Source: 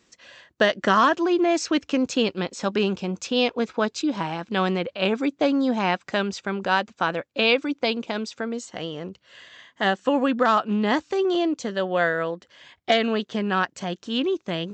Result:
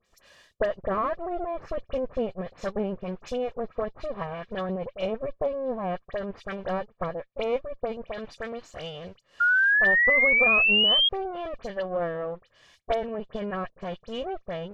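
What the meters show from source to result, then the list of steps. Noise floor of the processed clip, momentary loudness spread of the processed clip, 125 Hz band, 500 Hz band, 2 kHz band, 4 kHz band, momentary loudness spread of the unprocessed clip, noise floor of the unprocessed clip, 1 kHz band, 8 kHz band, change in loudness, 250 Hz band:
-66 dBFS, 19 LU, -6.0 dB, -4.5 dB, +4.0 dB, +1.5 dB, 9 LU, -65 dBFS, -7.5 dB, under -15 dB, -1.5 dB, -12.0 dB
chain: minimum comb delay 1.7 ms; in parallel at -7.5 dB: crossover distortion -40.5 dBFS; on the sum: treble ducked by the level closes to 870 Hz, closed at -19.5 dBFS; dispersion highs, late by 55 ms, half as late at 2800 Hz; painted sound rise, 9.4–11.09, 1400–3300 Hz -14 dBFS; gain -6.5 dB

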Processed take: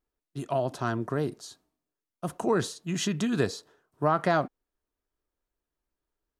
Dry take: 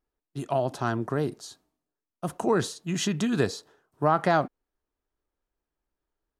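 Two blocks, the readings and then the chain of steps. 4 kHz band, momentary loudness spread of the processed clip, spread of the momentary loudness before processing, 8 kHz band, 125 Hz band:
-1.5 dB, 15 LU, 15 LU, -1.5 dB, -1.5 dB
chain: notch 820 Hz, Q 14; gain -1.5 dB

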